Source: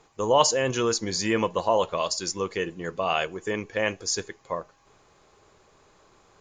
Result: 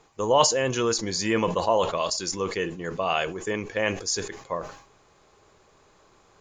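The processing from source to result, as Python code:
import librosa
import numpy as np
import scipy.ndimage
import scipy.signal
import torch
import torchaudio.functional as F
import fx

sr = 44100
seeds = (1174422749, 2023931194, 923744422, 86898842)

y = fx.sustainer(x, sr, db_per_s=96.0)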